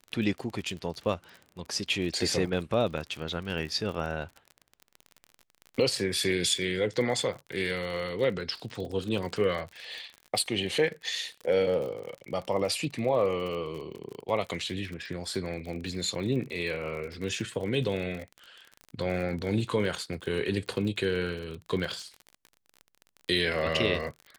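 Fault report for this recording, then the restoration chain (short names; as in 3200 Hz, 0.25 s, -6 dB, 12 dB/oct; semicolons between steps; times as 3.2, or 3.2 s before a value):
crackle 40/s -35 dBFS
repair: de-click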